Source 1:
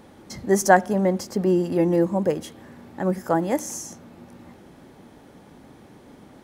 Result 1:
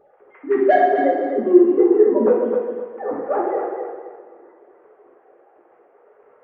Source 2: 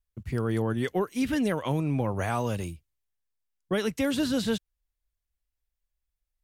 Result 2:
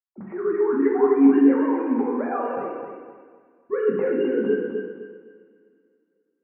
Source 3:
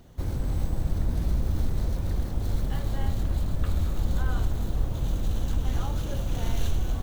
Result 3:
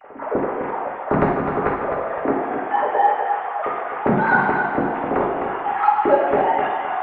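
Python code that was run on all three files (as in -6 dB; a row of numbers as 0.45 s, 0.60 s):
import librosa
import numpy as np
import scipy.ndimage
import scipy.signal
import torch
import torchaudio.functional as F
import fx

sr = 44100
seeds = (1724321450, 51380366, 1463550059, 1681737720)

p1 = fx.sine_speech(x, sr)
p2 = scipy.ndimage.gaussian_filter1d(p1, 5.3, mode='constant')
p3 = 10.0 ** (-13.5 / 20.0) * np.tanh(p2 / 10.0 ** (-13.5 / 20.0))
p4 = p2 + F.gain(torch.from_numpy(p3), -4.0).numpy()
p5 = fx.echo_feedback(p4, sr, ms=257, feedback_pct=29, wet_db=-7)
p6 = fx.rev_double_slope(p5, sr, seeds[0], early_s=0.97, late_s=3.0, knee_db=-21, drr_db=-5.0)
y = F.gain(torch.from_numpy(p6), -4.5).numpy()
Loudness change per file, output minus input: +4.5 LU, +7.0 LU, +9.5 LU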